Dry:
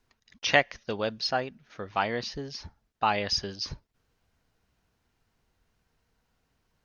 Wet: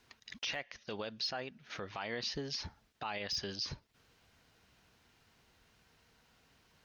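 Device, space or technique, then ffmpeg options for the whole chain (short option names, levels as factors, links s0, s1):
broadcast voice chain: -af "highpass=f=86:p=1,deesser=0.65,acompressor=threshold=0.00562:ratio=3,equalizer=f=3200:t=o:w=2:g=5.5,alimiter=level_in=2.82:limit=0.0631:level=0:latency=1:release=50,volume=0.355,volume=1.88"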